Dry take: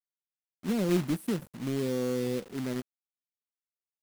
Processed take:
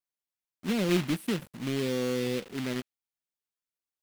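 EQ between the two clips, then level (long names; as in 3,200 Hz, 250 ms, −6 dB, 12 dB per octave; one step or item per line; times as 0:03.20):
dynamic equaliser 2,800 Hz, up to +8 dB, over −54 dBFS, Q 0.72
0.0 dB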